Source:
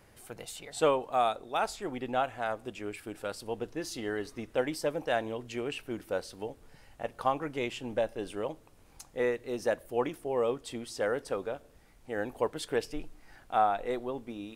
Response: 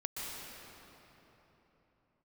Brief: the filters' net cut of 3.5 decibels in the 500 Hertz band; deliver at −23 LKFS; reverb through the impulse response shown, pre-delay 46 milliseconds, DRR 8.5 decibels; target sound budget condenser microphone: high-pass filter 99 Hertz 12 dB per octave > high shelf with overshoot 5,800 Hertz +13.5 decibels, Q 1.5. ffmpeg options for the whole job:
-filter_complex "[0:a]equalizer=frequency=500:width_type=o:gain=-4,asplit=2[link_01][link_02];[1:a]atrim=start_sample=2205,adelay=46[link_03];[link_02][link_03]afir=irnorm=-1:irlink=0,volume=-11dB[link_04];[link_01][link_04]amix=inputs=2:normalize=0,highpass=99,highshelf=frequency=5800:width_type=q:width=1.5:gain=13.5,volume=10.5dB"

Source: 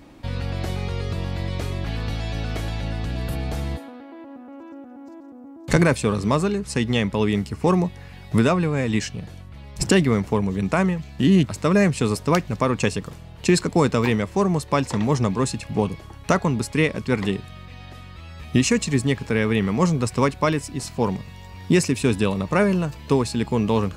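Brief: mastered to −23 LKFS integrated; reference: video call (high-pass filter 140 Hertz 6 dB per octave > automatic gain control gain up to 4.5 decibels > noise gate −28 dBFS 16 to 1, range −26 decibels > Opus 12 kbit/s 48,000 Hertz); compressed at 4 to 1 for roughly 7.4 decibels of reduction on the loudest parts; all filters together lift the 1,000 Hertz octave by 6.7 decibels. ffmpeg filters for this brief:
ffmpeg -i in.wav -af "equalizer=frequency=1000:width_type=o:gain=8,acompressor=threshold=-20dB:ratio=4,highpass=frequency=140:poles=1,dynaudnorm=maxgain=4.5dB,agate=range=-26dB:threshold=-28dB:ratio=16,volume=3.5dB" -ar 48000 -c:a libopus -b:a 12k out.opus

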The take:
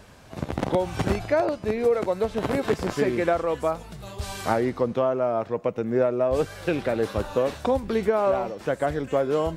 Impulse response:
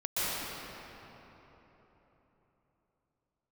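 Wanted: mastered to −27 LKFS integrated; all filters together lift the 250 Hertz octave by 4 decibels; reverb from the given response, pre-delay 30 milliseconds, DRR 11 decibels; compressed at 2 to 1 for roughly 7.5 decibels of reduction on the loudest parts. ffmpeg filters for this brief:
-filter_complex "[0:a]equalizer=frequency=250:width_type=o:gain=5,acompressor=threshold=-30dB:ratio=2,asplit=2[link_01][link_02];[1:a]atrim=start_sample=2205,adelay=30[link_03];[link_02][link_03]afir=irnorm=-1:irlink=0,volume=-21dB[link_04];[link_01][link_04]amix=inputs=2:normalize=0,volume=3dB"

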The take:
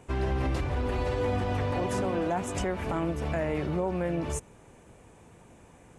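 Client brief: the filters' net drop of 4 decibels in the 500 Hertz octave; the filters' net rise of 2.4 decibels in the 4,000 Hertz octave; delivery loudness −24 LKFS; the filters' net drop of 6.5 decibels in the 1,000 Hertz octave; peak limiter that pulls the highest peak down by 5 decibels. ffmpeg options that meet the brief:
ffmpeg -i in.wav -af "equalizer=frequency=500:width_type=o:gain=-3,equalizer=frequency=1000:width_type=o:gain=-8,equalizer=frequency=4000:width_type=o:gain=4,volume=10dB,alimiter=limit=-15dB:level=0:latency=1" out.wav

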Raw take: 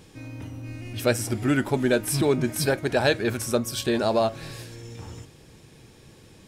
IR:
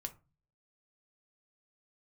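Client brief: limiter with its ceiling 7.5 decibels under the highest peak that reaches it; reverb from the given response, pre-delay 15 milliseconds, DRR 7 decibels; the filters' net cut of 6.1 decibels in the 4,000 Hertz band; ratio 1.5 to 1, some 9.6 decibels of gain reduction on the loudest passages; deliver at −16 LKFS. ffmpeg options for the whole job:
-filter_complex "[0:a]equalizer=frequency=4000:width_type=o:gain=-7.5,acompressor=threshold=-45dB:ratio=1.5,alimiter=level_in=3dB:limit=-24dB:level=0:latency=1,volume=-3dB,asplit=2[link_01][link_02];[1:a]atrim=start_sample=2205,adelay=15[link_03];[link_02][link_03]afir=irnorm=-1:irlink=0,volume=-4.5dB[link_04];[link_01][link_04]amix=inputs=2:normalize=0,volume=21dB"

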